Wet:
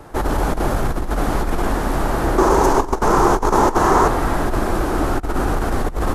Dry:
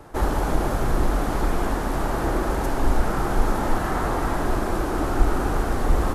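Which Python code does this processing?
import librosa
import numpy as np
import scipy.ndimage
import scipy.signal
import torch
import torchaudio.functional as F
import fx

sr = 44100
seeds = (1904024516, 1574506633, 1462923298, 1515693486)

y = fx.over_compress(x, sr, threshold_db=-21.0, ratio=-0.5)
y = fx.graphic_eq_15(y, sr, hz=(400, 1000, 6300), db=(10, 11, 10), at=(2.38, 4.08))
y = F.gain(torch.from_numpy(y), 3.5).numpy()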